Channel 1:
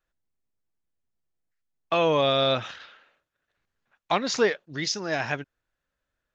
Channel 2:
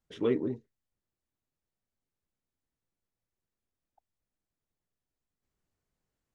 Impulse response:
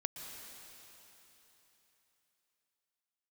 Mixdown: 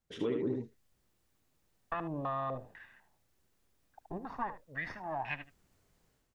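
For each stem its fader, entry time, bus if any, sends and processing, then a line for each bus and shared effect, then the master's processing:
−13.0 dB, 0.00 s, no send, echo send −15 dB, lower of the sound and its delayed copy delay 1.1 ms; noise gate with hold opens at −56 dBFS; low-pass on a step sequencer 4 Hz 380–2,500 Hz
−0.5 dB, 0.00 s, no send, echo send −4 dB, automatic gain control gain up to 13 dB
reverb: not used
echo: single-tap delay 75 ms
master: downward compressor 3 to 1, threshold −33 dBFS, peak gain reduction 10 dB

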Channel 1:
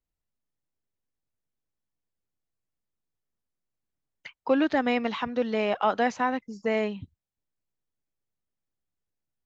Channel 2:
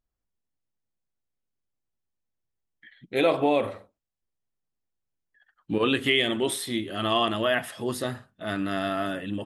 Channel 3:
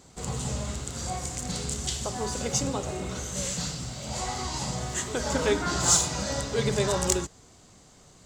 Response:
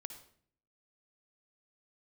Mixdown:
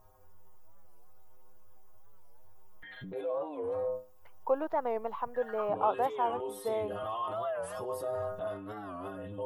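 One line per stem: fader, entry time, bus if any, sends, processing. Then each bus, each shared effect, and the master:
−9.5 dB, 0.00 s, no bus, no send, high-shelf EQ 4,600 Hz −8.5 dB
−4.5 dB, 0.00 s, bus A, send −20.5 dB, stiff-string resonator 93 Hz, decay 0.4 s, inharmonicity 0.008; envelope flattener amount 100%
muted
bus A: 0.0 dB, brickwall limiter −33 dBFS, peak gain reduction 15 dB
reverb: on, RT60 0.55 s, pre-delay 51 ms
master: octave-band graphic EQ 250/500/1,000/2,000/4,000/8,000 Hz −11/+6/+10/−11/−11/−7 dB; wow of a warped record 45 rpm, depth 160 cents

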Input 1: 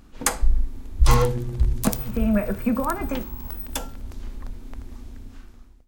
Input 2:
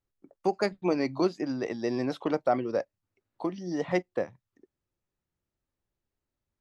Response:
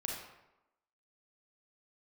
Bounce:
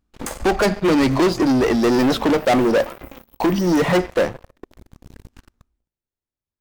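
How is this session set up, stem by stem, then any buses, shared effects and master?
−8.0 dB, 0.00 s, send −19.5 dB, brickwall limiter −13 dBFS, peak gain reduction 10 dB; downward compressor 5 to 1, threshold −28 dBFS, peak gain reduction 11.5 dB; tuned comb filter 57 Hz, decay 0.19 s, harmonics all, mix 90%; automatic ducking −10 dB, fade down 1.10 s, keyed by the second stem
+2.0 dB, 0.00 s, send −22 dB, hard clipping −14.5 dBFS, distortion −47 dB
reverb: on, RT60 0.95 s, pre-delay 31 ms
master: leveller curve on the samples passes 5

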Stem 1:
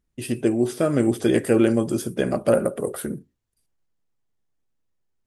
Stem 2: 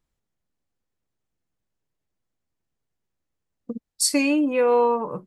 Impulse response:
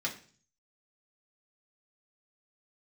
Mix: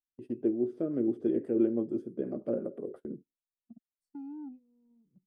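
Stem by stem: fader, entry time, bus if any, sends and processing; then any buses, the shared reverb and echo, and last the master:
−6.0 dB, 0.00 s, no send, resonant band-pass 320 Hz, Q 1.7; rotating-speaker cabinet horn 6 Hz
−13.5 dB, 0.00 s, no send, inverse Chebyshev low-pass filter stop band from 540 Hz, stop band 40 dB; soft clipping −24 dBFS, distortion −17 dB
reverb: not used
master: noise gate −46 dBFS, range −19 dB

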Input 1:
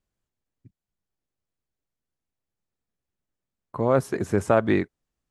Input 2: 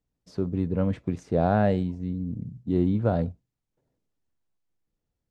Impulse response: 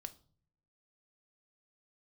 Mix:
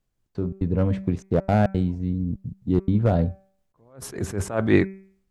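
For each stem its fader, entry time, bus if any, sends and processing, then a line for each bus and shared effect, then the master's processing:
+1.5 dB, 0.00 s, no send, level that may rise only so fast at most 140 dB per second
−1.5 dB, 0.00 s, no send, asymmetric clip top −17 dBFS, bottom −14.5 dBFS; gate pattern "x.x.xx.xxxxxx" 172 BPM −60 dB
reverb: not used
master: low-shelf EQ 76 Hz +9.5 dB; hum removal 192.7 Hz, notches 13; automatic gain control gain up to 4.5 dB

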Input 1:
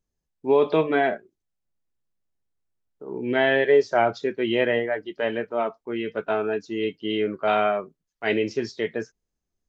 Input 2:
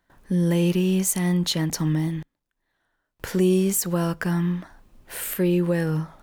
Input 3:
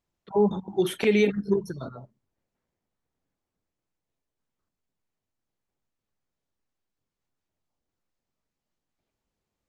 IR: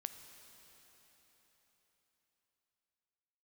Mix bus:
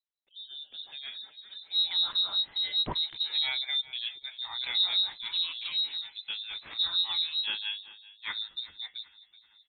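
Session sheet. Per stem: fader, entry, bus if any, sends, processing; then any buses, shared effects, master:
0:00.81 −20 dB → 0:01.34 −8.5 dB, 0.00 s, no send, echo send −18 dB, no processing
−4.0 dB, 1.40 s, no send, no echo send, no processing
−12.0 dB, 0.00 s, no send, echo send −14.5 dB, automatic ducking −10 dB, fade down 0.40 s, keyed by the first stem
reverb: not used
echo: repeating echo 379 ms, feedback 59%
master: two-band tremolo in antiphase 5 Hz, depth 100%, crossover 490 Hz; voice inversion scrambler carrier 4,000 Hz

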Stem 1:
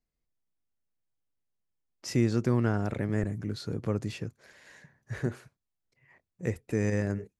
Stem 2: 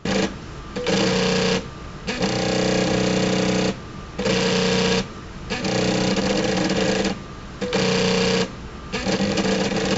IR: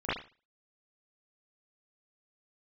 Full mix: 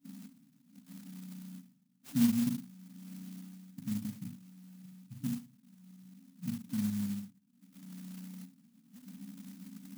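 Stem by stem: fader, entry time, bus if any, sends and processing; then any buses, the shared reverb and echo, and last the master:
−2.0 dB, 0.00 s, muted 0:02.49–0:03.78, send −10.5 dB, no processing
−2.5 dB, 0.00 s, send −18 dB, high-pass filter 630 Hz 12 dB per octave; high-shelf EQ 5,200 Hz −8 dB; automatic ducking −19 dB, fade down 0.40 s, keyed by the first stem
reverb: on, pre-delay 37 ms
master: high-pass filter 170 Hz 24 dB per octave; brick-wall band-stop 290–7,500 Hz; converter with an unsteady clock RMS 0.12 ms

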